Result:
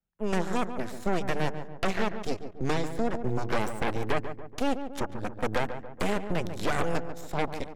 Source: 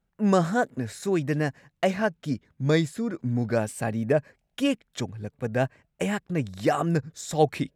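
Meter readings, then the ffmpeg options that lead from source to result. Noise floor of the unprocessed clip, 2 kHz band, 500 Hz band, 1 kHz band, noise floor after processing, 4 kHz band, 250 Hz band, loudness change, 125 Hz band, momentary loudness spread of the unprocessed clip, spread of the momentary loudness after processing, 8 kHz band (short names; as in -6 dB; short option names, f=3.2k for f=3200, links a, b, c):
-76 dBFS, -2.0 dB, -5.0 dB, -1.5 dB, -44 dBFS, -2.0 dB, -6.0 dB, -4.5 dB, -7.0 dB, 8 LU, 5 LU, -5.5 dB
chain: -filter_complex "[0:a]dynaudnorm=f=220:g=7:m=11.5dB,alimiter=limit=-10dB:level=0:latency=1:release=21,acrossover=split=160|420|970|2200[a][b][c][d][e];[a]acompressor=threshold=-32dB:ratio=4[f];[b]acompressor=threshold=-30dB:ratio=4[g];[c]acompressor=threshold=-23dB:ratio=4[h];[d]acompressor=threshold=-39dB:ratio=4[i];[e]acompressor=threshold=-39dB:ratio=4[j];[f][g][h][i][j]amix=inputs=5:normalize=0,aeval=exprs='0.282*(cos(1*acos(clip(val(0)/0.282,-1,1)))-cos(1*PI/2))+0.0178*(cos(3*acos(clip(val(0)/0.282,-1,1)))-cos(3*PI/2))+0.112*(cos(6*acos(clip(val(0)/0.282,-1,1)))-cos(6*PI/2))+0.01*(cos(7*acos(clip(val(0)/0.282,-1,1)))-cos(7*PI/2))':c=same,asplit=2[k][l];[l]adelay=142,lowpass=f=1.4k:p=1,volume=-8.5dB,asplit=2[m][n];[n]adelay=142,lowpass=f=1.4k:p=1,volume=0.53,asplit=2[o][p];[p]adelay=142,lowpass=f=1.4k:p=1,volume=0.53,asplit=2[q][r];[r]adelay=142,lowpass=f=1.4k:p=1,volume=0.53,asplit=2[s][t];[t]adelay=142,lowpass=f=1.4k:p=1,volume=0.53,asplit=2[u][v];[v]adelay=142,lowpass=f=1.4k:p=1,volume=0.53[w];[k][m][o][q][s][u][w]amix=inputs=7:normalize=0,volume=-7.5dB"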